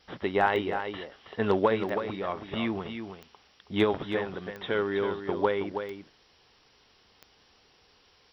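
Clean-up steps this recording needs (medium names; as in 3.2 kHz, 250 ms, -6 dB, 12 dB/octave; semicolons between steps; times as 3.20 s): de-click; noise reduction 12 dB, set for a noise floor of -63 dBFS; inverse comb 322 ms -8 dB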